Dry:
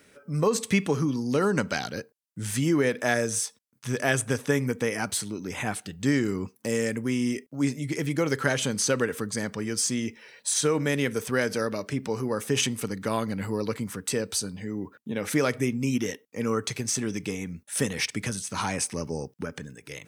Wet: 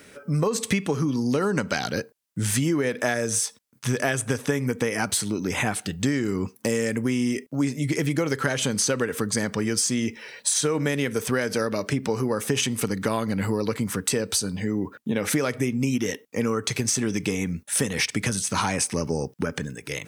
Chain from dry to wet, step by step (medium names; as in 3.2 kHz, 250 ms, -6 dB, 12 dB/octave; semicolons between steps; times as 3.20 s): compression, threshold -29 dBFS, peak gain reduction 11 dB; trim +8.5 dB